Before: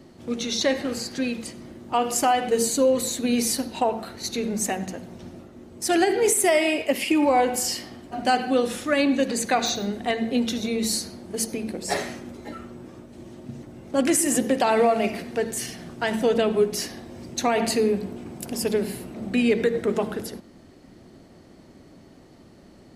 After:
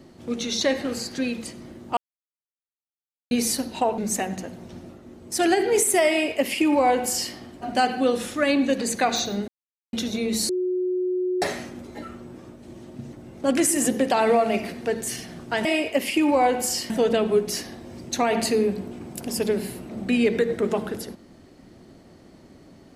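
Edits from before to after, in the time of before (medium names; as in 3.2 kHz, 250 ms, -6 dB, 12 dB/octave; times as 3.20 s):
1.97–3.31 s: mute
3.98–4.48 s: delete
6.59–7.84 s: copy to 16.15 s
9.98–10.43 s: mute
10.99–11.92 s: bleep 365 Hz -21.5 dBFS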